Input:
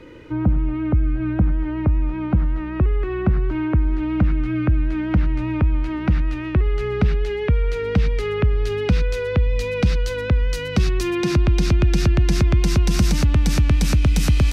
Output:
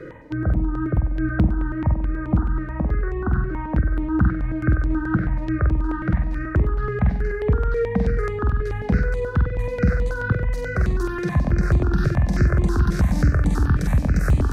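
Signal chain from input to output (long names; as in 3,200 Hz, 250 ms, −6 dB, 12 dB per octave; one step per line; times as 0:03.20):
high-pass filter 44 Hz 6 dB per octave
high shelf with overshoot 2,100 Hz −10 dB, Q 3
reversed playback
upward compression, threshold −23 dBFS
reversed playback
flutter between parallel walls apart 8.1 metres, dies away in 0.62 s
step-sequenced phaser 9.3 Hz 240–5,300 Hz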